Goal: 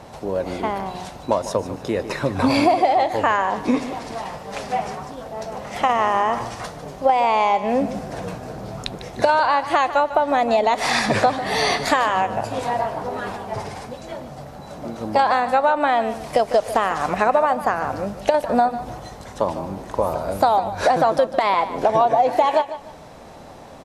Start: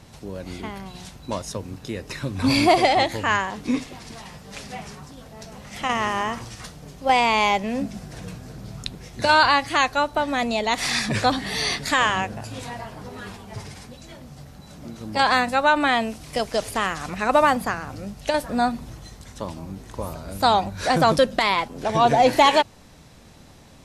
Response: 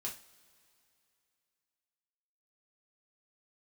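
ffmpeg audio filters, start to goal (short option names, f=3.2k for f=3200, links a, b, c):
-filter_complex "[0:a]equalizer=f=700:t=o:w=2.2:g=15,acompressor=threshold=-14dB:ratio=10,asplit=2[a][b];[b]aecho=0:1:150|300|450:0.224|0.0694|0.0215[c];[a][c]amix=inputs=2:normalize=0"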